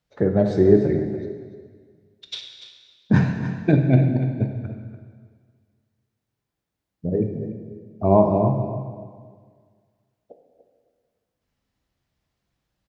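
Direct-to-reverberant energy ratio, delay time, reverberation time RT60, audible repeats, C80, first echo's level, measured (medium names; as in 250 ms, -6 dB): 3.0 dB, 291 ms, 1.7 s, 1, 6.0 dB, -11.5 dB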